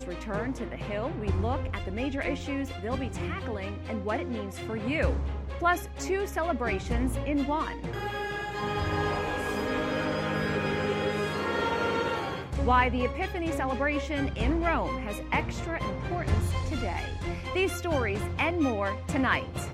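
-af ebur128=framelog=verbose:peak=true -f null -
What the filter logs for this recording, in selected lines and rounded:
Integrated loudness:
  I:         -29.8 LUFS
  Threshold: -39.8 LUFS
Loudness range:
  LRA:         4.1 LU
  Threshold: -49.8 LUFS
  LRA low:   -32.1 LUFS
  LRA high:  -28.0 LUFS
True peak:
  Peak:       -9.3 dBFS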